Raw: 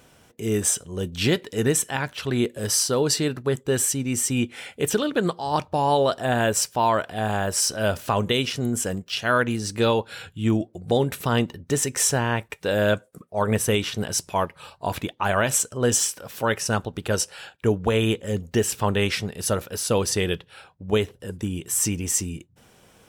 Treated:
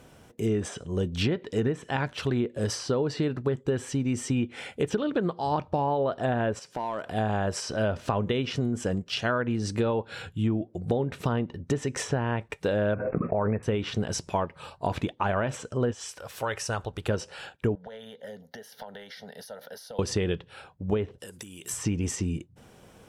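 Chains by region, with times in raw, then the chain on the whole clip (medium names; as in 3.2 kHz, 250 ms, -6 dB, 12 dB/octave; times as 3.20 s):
6.59–7.06 s: high-pass 160 Hz + compression 3:1, threshold -32 dBFS + hard clipper -24.5 dBFS
12.94–13.63 s: brick-wall FIR low-pass 2.7 kHz + swell ahead of each attack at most 23 dB/s
15.91–17.08 s: peaking EQ 220 Hz -13.5 dB 1.7 oct + compression 2:1, threshold -27 dBFS
17.75–19.99 s: Bessel high-pass 320 Hz, order 4 + compression 16:1, threshold -34 dBFS + static phaser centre 1.7 kHz, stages 8
21.18–21.70 s: compression 12:1, threshold -36 dBFS + tilt EQ +4 dB/octave
whole clip: low-pass that closes with the level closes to 2.3 kHz, closed at -16.5 dBFS; tilt shelf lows +3.5 dB, about 1.2 kHz; compression, threshold -23 dBFS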